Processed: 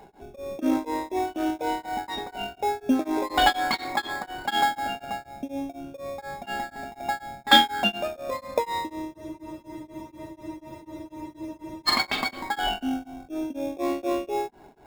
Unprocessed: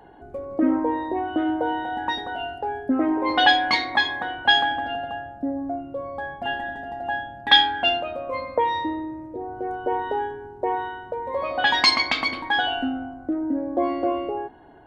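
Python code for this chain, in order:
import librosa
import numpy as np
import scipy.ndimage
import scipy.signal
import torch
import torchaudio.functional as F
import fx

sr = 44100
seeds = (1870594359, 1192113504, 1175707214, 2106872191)

p1 = x + 0.41 * np.pad(x, (int(5.0 * sr / 1000.0), 0))[:len(x)]
p2 = fx.sample_hold(p1, sr, seeds[0], rate_hz=3000.0, jitter_pct=0)
p3 = p1 + (p2 * librosa.db_to_amplitude(-6.0))
p4 = fx.spec_freeze(p3, sr, seeds[1], at_s=9.15, hold_s=2.73)
p5 = p4 * np.abs(np.cos(np.pi * 4.1 * np.arange(len(p4)) / sr))
y = p5 * librosa.db_to_amplitude(-2.0)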